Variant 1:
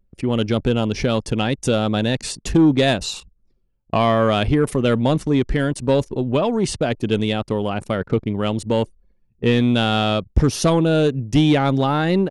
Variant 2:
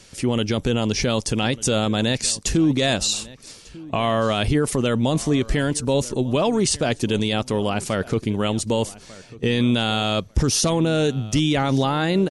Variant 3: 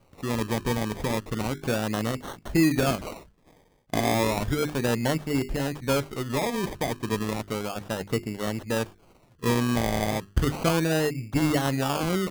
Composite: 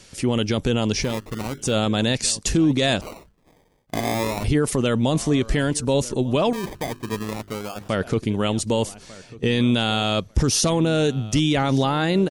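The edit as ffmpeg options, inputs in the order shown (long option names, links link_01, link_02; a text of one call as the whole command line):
ffmpeg -i take0.wav -i take1.wav -i take2.wav -filter_complex "[2:a]asplit=3[link_01][link_02][link_03];[1:a]asplit=4[link_04][link_05][link_06][link_07];[link_04]atrim=end=1.2[link_08];[link_01]atrim=start=0.96:end=1.76[link_09];[link_05]atrim=start=1.52:end=3.012[link_10];[link_02]atrim=start=3.008:end=4.442[link_11];[link_06]atrim=start=4.438:end=6.532[link_12];[link_03]atrim=start=6.528:end=7.892[link_13];[link_07]atrim=start=7.888[link_14];[link_08][link_09]acrossfade=duration=0.24:curve1=tri:curve2=tri[link_15];[link_15][link_10]acrossfade=duration=0.24:curve1=tri:curve2=tri[link_16];[link_16][link_11]acrossfade=duration=0.004:curve1=hsin:curve2=hsin[link_17];[link_17][link_12]acrossfade=duration=0.004:curve1=hsin:curve2=hsin[link_18];[link_18][link_13]acrossfade=duration=0.004:curve1=hsin:curve2=hsin[link_19];[link_19][link_14]acrossfade=duration=0.004:curve1=hsin:curve2=hsin" out.wav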